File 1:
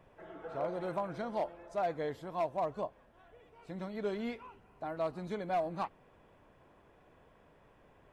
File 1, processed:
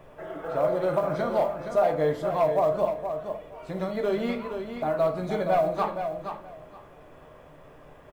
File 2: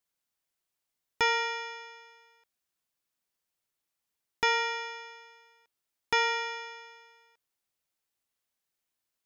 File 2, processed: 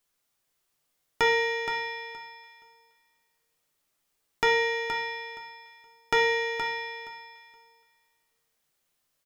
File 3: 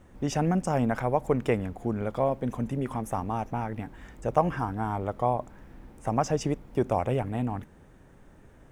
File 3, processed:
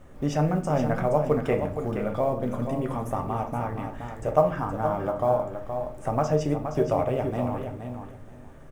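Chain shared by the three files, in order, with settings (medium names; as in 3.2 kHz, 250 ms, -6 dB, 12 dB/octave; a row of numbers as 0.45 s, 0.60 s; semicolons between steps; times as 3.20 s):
small resonant body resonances 610/1200 Hz, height 8 dB, ringing for 40 ms; in parallel at -2.5 dB: compression 16:1, threshold -34 dBFS; on the sum: dynamic bell 8.6 kHz, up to -6 dB, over -50 dBFS, Q 0.74; companded quantiser 8-bit; on a send: feedback delay 471 ms, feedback 18%, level -8 dB; on the sum: simulated room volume 44 m³, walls mixed, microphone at 0.37 m; normalise loudness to -27 LUFS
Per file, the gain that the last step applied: +4.0 dB, 0.0 dB, -3.0 dB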